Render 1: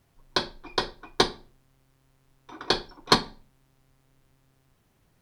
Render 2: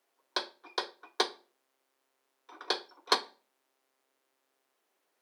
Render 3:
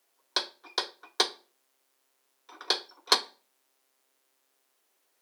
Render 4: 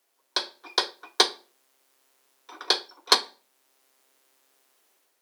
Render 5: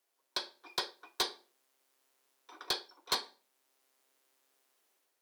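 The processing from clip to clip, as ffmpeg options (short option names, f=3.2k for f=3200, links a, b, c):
-af "highpass=f=370:w=0.5412,highpass=f=370:w=1.3066,volume=-6.5dB"
-af "highshelf=f=3.2k:g=9.5"
-af "dynaudnorm=f=350:g=3:m=7dB"
-af "asoftclip=type=hard:threshold=-16.5dB,volume=-8.5dB"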